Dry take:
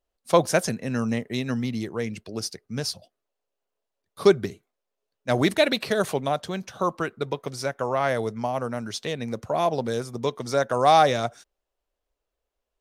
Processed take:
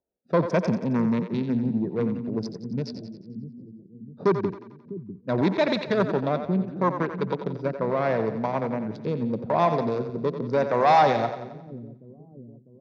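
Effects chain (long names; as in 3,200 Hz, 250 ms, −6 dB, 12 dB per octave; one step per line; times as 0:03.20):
adaptive Wiener filter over 41 samples
in parallel at −2 dB: brickwall limiter −15.5 dBFS, peak gain reduction 10.5 dB
on the sum: rotating-speaker cabinet horn 0.8 Hz
soft clipping −17 dBFS, distortion −11 dB
loudspeaker in its box 130–4,600 Hz, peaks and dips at 180 Hz +6 dB, 960 Hz +9 dB, 3,000 Hz −10 dB
on a send: echo with a time of its own for lows and highs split 330 Hz, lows 650 ms, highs 89 ms, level −9 dB
on the sum: level +1 dB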